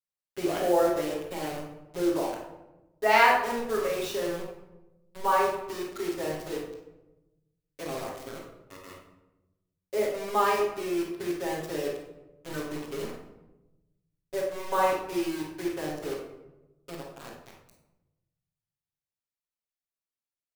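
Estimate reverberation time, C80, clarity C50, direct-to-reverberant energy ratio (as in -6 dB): 1.0 s, 6.0 dB, 1.5 dB, -9.5 dB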